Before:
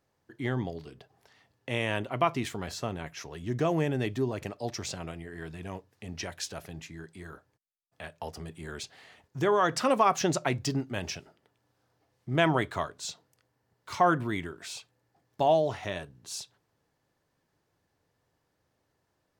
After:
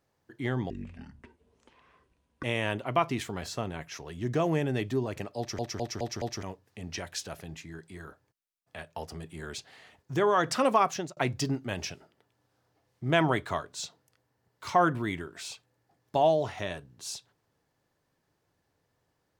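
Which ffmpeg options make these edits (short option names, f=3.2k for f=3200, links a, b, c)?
-filter_complex "[0:a]asplit=9[a][b][c][d][e][f][g][h][i];[a]atrim=end=0.704[j];[b]atrim=start=0.7:end=1.69,asetpts=PTS-STARTPTS,asetrate=25137,aresample=44100[k];[c]atrim=start=1.686:end=4.842[l];[d]atrim=start=4.628:end=4.842[m];[e]atrim=start=4.628:end=4.842[n];[f]atrim=start=4.628:end=4.842[o];[g]atrim=start=4.628:end=4.842[p];[h]atrim=start=5.678:end=10.42,asetpts=PTS-STARTPTS,afade=t=out:st=4.362:d=0.38[q];[i]atrim=start=10.42,asetpts=PTS-STARTPTS,afade=t=in:d=0.004:c=hsin[r];[j][k]acrossfade=d=0.004:c1=hsin:c2=hsin[s];[s][l]acrossfade=d=0.004:c1=hsin:c2=hsin[t];[t][m]acrossfade=d=0.004:c1=hsin:c2=hsin[u];[u][n]acrossfade=d=0.004:c1=hsin:c2=hsin[v];[v][o]acrossfade=d=0.004:c1=hsin:c2=hsin[w];[w][p]acrossfade=d=0.004:c1=hsin:c2=hsin[x];[q][r]concat=n=2:v=0:a=1[y];[x][y]acrossfade=d=0.004:c1=hsin:c2=hsin"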